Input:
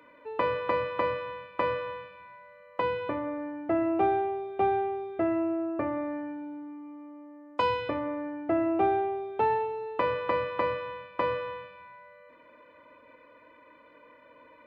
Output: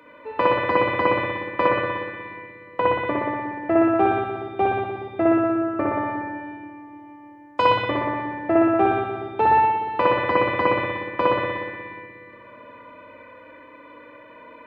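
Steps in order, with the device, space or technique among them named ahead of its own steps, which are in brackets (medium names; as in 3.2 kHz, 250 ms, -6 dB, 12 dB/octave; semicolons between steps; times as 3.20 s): 1.67–3.08 s: low-pass that closes with the level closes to 2.9 kHz, closed at -29 dBFS; dub delay into a spring reverb (filtered feedback delay 360 ms, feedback 61%, low-pass 810 Hz, level -20 dB; spring tank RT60 1.4 s, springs 60 ms, chirp 60 ms, DRR -3.5 dB); trim +5.5 dB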